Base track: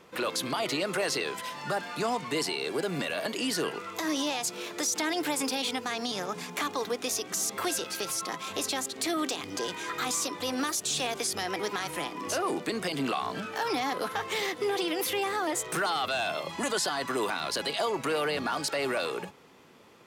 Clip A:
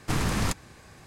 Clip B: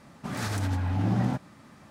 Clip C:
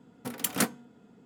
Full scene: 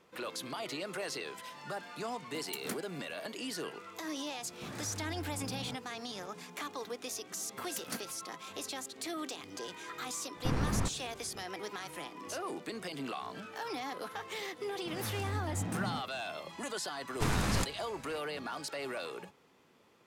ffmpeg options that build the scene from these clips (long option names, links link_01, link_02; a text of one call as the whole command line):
ffmpeg -i bed.wav -i cue0.wav -i cue1.wav -i cue2.wav -filter_complex "[3:a]asplit=2[link_01][link_02];[2:a]asplit=2[link_03][link_04];[1:a]asplit=2[link_05][link_06];[0:a]volume=-9.5dB[link_07];[link_03]acompressor=threshold=-33dB:ratio=6:attack=0.98:release=27:knee=1:detection=peak[link_08];[link_05]lowpass=frequency=1100:poles=1[link_09];[link_04]flanger=delay=18.5:depth=4.9:speed=2.3[link_10];[link_01]atrim=end=1.25,asetpts=PTS-STARTPTS,volume=-13.5dB,afade=type=in:duration=0.004:curve=hsin,afade=type=out:start_time=1.246:duration=0.004:curve=hsin,adelay=2090[link_11];[link_08]atrim=end=1.9,asetpts=PTS-STARTPTS,volume=-7.5dB,afade=type=in:duration=0.004:curve=hsin,afade=type=out:start_time=1.896:duration=0.004:curve=hsin,adelay=4380[link_12];[link_02]atrim=end=1.25,asetpts=PTS-STARTPTS,volume=-14.5dB,afade=type=in:duration=0.004:curve=hsin,afade=type=out:start_time=1.246:duration=0.004:curve=hsin,adelay=7320[link_13];[link_09]atrim=end=1.06,asetpts=PTS-STARTPTS,volume=-4.5dB,afade=type=in:duration=0.004:curve=hsin,afade=type=out:start_time=1.056:duration=0.004:curve=hsin,adelay=10360[link_14];[link_10]atrim=end=1.9,asetpts=PTS-STARTPTS,volume=-7dB,afade=type=in:duration=0.004:curve=hsin,afade=type=out:start_time=1.896:duration=0.004:curve=hsin,adelay=14620[link_15];[link_06]atrim=end=1.06,asetpts=PTS-STARTPTS,volume=-4.5dB,afade=type=in:duration=0.004:curve=hsin,afade=type=out:start_time=1.056:duration=0.004:curve=hsin,adelay=17120[link_16];[link_07][link_11][link_12][link_13][link_14][link_15][link_16]amix=inputs=7:normalize=0" out.wav